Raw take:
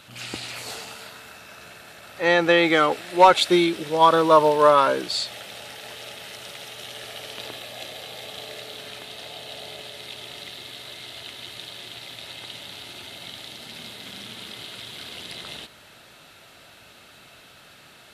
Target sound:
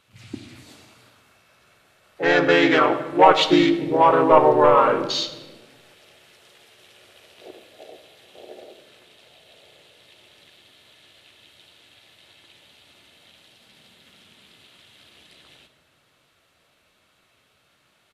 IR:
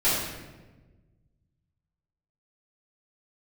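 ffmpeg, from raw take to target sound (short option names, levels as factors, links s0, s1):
-filter_complex "[0:a]acontrast=60,afwtdn=0.0631,asplit=2[s0][s1];[s1]asetrate=37084,aresample=44100,atempo=1.18921,volume=0.794[s2];[s0][s2]amix=inputs=2:normalize=0,asplit=2[s3][s4];[1:a]atrim=start_sample=2205[s5];[s4][s5]afir=irnorm=-1:irlink=0,volume=0.0794[s6];[s3][s6]amix=inputs=2:normalize=0,volume=0.447"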